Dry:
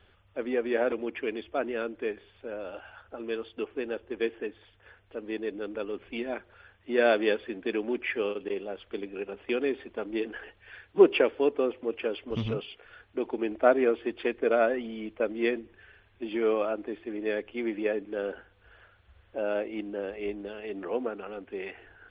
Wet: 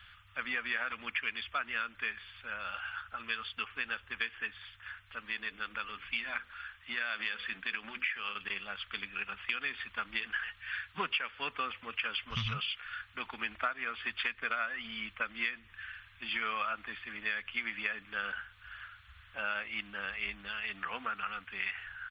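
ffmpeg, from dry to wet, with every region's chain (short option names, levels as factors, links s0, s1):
-filter_complex "[0:a]asettb=1/sr,asplit=3[s0][s1][s2];[s0]atrim=end=5.204[s3];[s1]atrim=start=5.2:end=8.37,asetpts=PTS-STARTPTS,afade=t=in:d=0.004:c=qsin,afade=t=out:st=3.166:d=0.004:c=qsin,bandreject=f=50:t=h:w=6,bandreject=f=100:t=h:w=6,bandreject=f=150:t=h:w=6,bandreject=f=200:t=h:w=6,bandreject=f=250:t=h:w=6,bandreject=f=300:t=h:w=6,bandreject=f=350:t=h:w=6,bandreject=f=400:t=h:w=6,bandreject=f=450:t=h:w=6,bandreject=f=500:t=h:w=6,acompressor=threshold=0.0316:ratio=6:attack=3.2:release=140:knee=1:detection=peak[s4];[s2]atrim=start=8.366[s5];[s3][s4]acrossfade=d=0.004:c1=hsin:c2=qsin[s6];[s6][s5]acrossfade=d=0.004:c1=qsin:c2=hsin,firequalizer=gain_entry='entry(140,0);entry(340,-25);entry(1200,10)':delay=0.05:min_phase=1,acompressor=threshold=0.0316:ratio=12"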